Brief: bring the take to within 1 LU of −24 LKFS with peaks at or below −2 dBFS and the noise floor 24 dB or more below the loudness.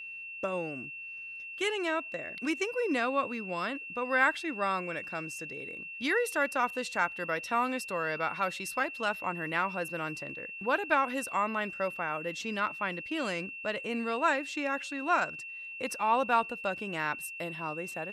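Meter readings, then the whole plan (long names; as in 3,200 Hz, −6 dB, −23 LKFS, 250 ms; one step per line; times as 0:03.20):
interfering tone 2,700 Hz; level of the tone −40 dBFS; integrated loudness −32.0 LKFS; sample peak −11.5 dBFS; target loudness −24.0 LKFS
→ notch filter 2,700 Hz, Q 30
level +8 dB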